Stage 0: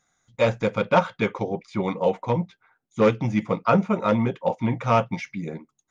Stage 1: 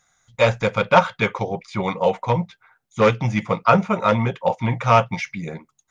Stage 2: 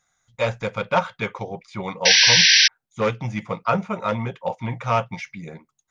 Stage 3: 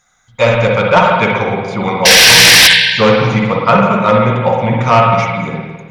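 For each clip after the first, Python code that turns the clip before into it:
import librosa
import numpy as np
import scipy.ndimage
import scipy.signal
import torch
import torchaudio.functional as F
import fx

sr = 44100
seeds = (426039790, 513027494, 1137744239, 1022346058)

y1 = fx.peak_eq(x, sr, hz=290.0, db=-10.5, octaves=1.4)
y1 = y1 * 10.0 ** (7.0 / 20.0)
y2 = fx.spec_paint(y1, sr, seeds[0], shape='noise', start_s=2.05, length_s=0.63, low_hz=1500.0, high_hz=6000.0, level_db=-8.0)
y2 = y2 * 10.0 ** (-6.0 / 20.0)
y3 = fx.rev_spring(y2, sr, rt60_s=1.4, pass_ms=(51, 55), chirp_ms=35, drr_db=-1.0)
y3 = fx.fold_sine(y3, sr, drive_db=10, ceiling_db=1.0)
y3 = y3 * 10.0 ** (-2.5 / 20.0)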